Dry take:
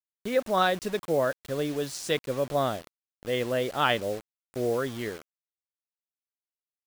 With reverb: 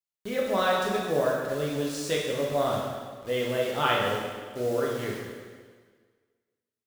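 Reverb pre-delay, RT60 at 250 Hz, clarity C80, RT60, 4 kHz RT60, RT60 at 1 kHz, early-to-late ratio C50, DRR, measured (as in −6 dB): 5 ms, 1.6 s, 3.0 dB, 1.6 s, 1.5 s, 1.6 s, 1.0 dB, −3.5 dB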